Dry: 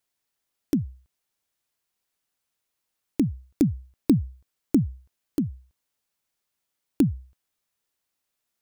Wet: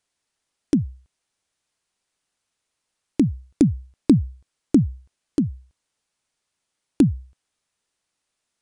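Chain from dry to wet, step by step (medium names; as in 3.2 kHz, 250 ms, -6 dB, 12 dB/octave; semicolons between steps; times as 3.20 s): resampled via 22.05 kHz; trim +4.5 dB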